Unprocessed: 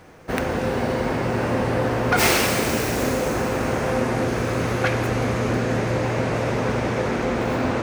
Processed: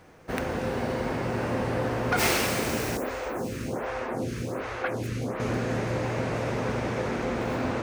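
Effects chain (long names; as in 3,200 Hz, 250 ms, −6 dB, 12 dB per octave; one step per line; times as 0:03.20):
0:02.97–0:05.40: phaser with staggered stages 1.3 Hz
level −6 dB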